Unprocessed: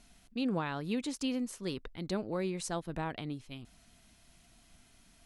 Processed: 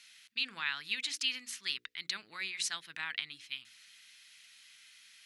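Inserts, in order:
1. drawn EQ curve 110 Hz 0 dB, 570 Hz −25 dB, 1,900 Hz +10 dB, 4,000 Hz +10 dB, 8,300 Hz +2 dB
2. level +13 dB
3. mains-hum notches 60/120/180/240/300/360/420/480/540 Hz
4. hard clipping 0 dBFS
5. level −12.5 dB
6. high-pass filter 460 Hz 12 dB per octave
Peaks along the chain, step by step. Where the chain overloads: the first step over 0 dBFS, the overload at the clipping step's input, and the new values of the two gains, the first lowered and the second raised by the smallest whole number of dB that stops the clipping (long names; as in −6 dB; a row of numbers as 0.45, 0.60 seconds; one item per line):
−16.0, −3.0, −3.0, −3.0, −15.5, −16.0 dBFS
no step passes full scale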